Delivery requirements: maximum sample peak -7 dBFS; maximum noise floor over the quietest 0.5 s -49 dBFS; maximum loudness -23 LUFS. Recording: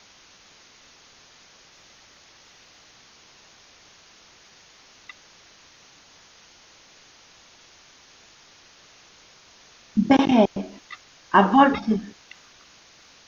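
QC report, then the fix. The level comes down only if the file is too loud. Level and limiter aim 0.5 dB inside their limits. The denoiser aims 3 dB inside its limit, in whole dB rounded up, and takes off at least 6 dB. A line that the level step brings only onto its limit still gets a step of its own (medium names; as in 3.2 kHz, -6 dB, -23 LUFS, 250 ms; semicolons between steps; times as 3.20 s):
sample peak -3.5 dBFS: fail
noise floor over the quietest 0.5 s -53 dBFS: pass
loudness -20.0 LUFS: fail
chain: trim -3.5 dB; peak limiter -7.5 dBFS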